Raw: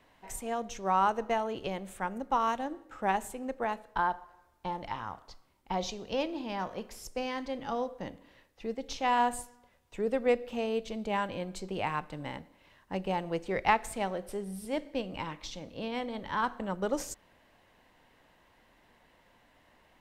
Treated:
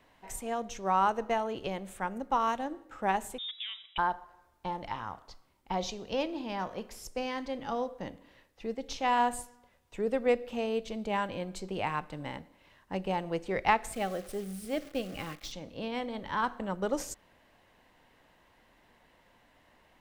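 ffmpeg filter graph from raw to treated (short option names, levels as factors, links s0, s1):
-filter_complex "[0:a]asettb=1/sr,asplit=3[s0][s1][s2];[s0]atrim=end=3.384[s3];[s1]atrim=start=3.38:end=3.98,asetpts=PTS-STARTPTS,afade=t=in:d=0.004:c=qsin,afade=t=out:st=0.596:d=0.004:c=qsin,acompressor=threshold=0.0178:ratio=6:attack=3.2:release=140:knee=1:detection=peak,lowpass=f=3300:t=q:w=0.5098,lowpass=f=3300:t=q:w=0.6013,lowpass=f=3300:t=q:w=0.9,lowpass=f=3300:t=q:w=2.563,afreqshift=-3900[s4];[s2]atrim=start=3.976[s5];[s3][s4]acrossfade=d=0.004:c1=hsin:c2=qsin[s6];[s6][s5]acrossfade=d=0.004:c1=qsin:c2=hsin,asettb=1/sr,asplit=3[s7][s8][s9];[s7]atrim=end=13.934[s10];[s8]atrim=start=13.93:end=15.52,asetpts=PTS-STARTPTS,afade=t=in:d=0.004:c=qsin,afade=t=out:st=1.586:d=0.004:c=qsin,acrusher=bits=9:dc=4:mix=0:aa=0.000001,asuperstop=centerf=940:order=8:qfactor=5[s11];[s9]atrim=start=15.516[s12];[s10][s11]acrossfade=d=0.004:c1=hsin:c2=qsin[s13];[s13][s12]acrossfade=d=0.004:c1=qsin:c2=hsin"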